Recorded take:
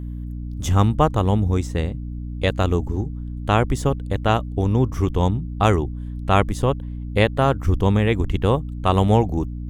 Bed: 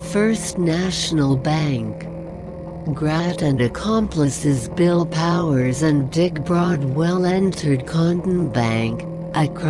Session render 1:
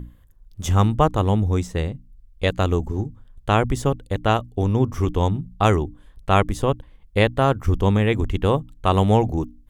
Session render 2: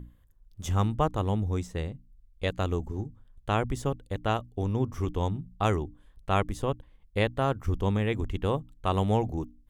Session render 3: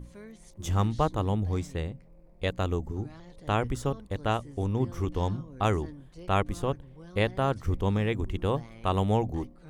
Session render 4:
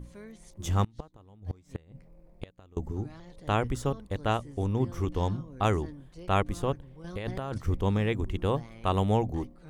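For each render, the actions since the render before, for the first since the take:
notches 60/120/180/240/300 Hz
gain -8.5 dB
add bed -29.5 dB
0.84–2.77 flipped gate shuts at -20 dBFS, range -27 dB; 7.04–7.58 negative-ratio compressor -33 dBFS

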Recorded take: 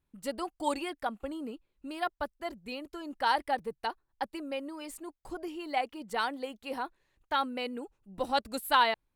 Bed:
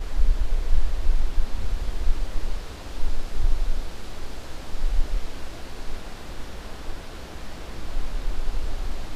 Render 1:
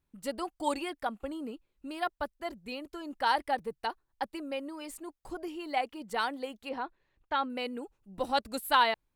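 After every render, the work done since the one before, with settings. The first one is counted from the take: 6.69–7.5 air absorption 150 m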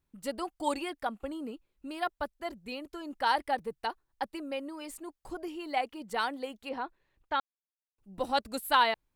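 7.4–7.98 mute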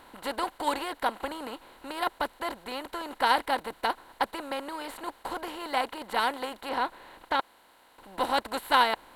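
per-bin compression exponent 0.4; upward expander 1.5:1, over -35 dBFS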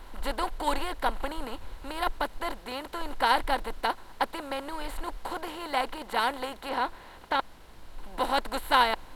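add bed -16.5 dB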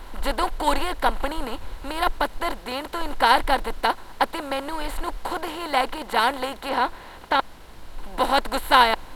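gain +6.5 dB

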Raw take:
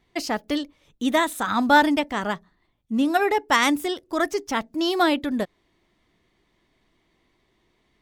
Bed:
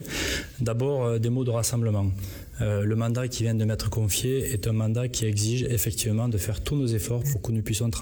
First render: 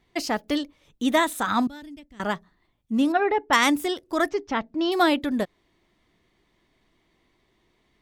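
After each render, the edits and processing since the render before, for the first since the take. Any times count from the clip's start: 1.67–2.2 passive tone stack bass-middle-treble 10-0-1; 3.12–3.53 air absorption 340 m; 4.29–4.92 air absorption 190 m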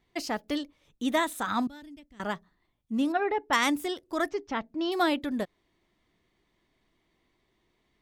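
gain -5.5 dB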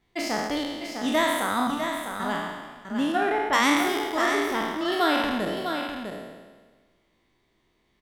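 spectral trails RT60 1.40 s; echo 0.652 s -7 dB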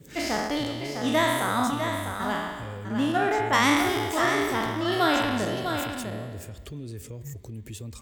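add bed -12.5 dB

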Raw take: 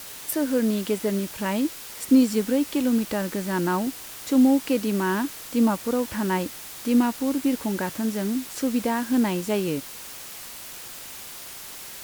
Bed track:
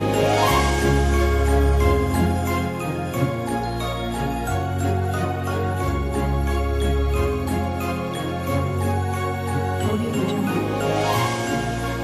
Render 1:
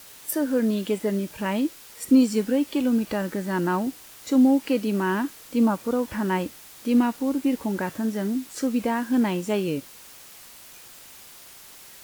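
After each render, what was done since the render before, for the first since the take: noise print and reduce 7 dB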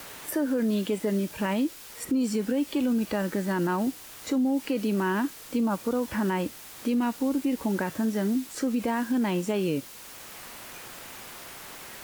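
limiter -19 dBFS, peak gain reduction 10.5 dB; three-band squash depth 40%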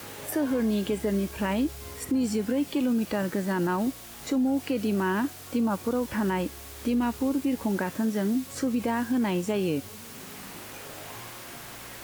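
add bed track -25.5 dB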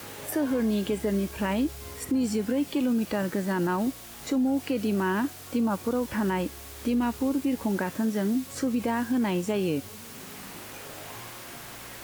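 nothing audible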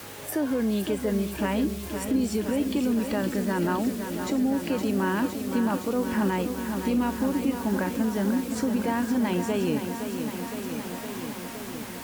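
lo-fi delay 0.515 s, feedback 80%, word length 9-bit, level -8 dB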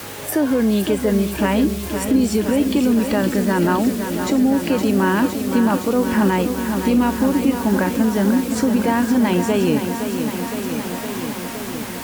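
gain +8.5 dB

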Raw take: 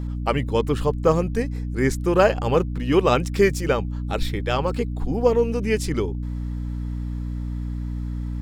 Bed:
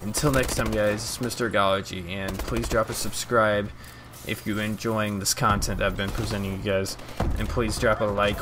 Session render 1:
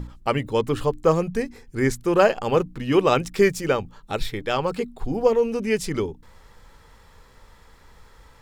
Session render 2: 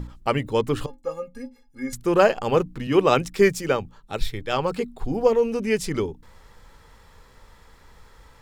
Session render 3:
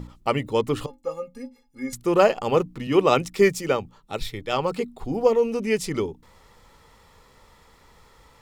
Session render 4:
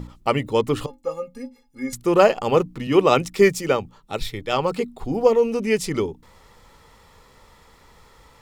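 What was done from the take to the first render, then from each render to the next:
notches 60/120/180/240/300 Hz
0.86–1.93 metallic resonator 250 Hz, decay 0.22 s, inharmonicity 0.03; 2.87–4.53 three-band expander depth 40%
low shelf 68 Hz -9.5 dB; notch 1600 Hz, Q 7.1
gain +2.5 dB; limiter -3 dBFS, peak gain reduction 1 dB

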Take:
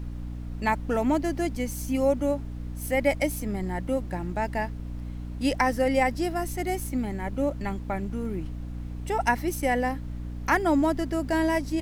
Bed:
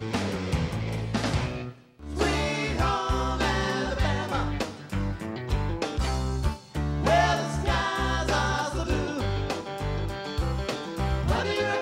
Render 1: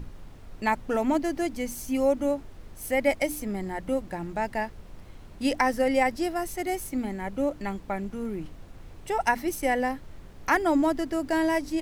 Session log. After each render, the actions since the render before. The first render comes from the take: notches 60/120/180/240/300 Hz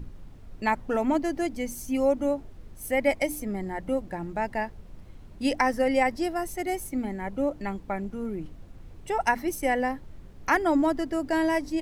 denoiser 6 dB, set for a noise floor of -47 dBFS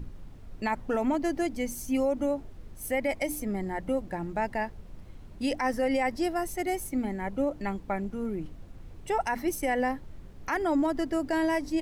limiter -19 dBFS, peak gain reduction 9.5 dB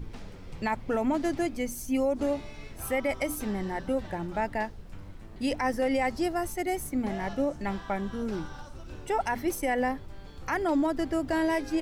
add bed -19 dB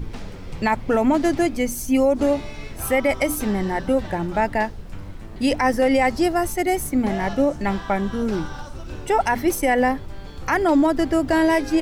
gain +9 dB

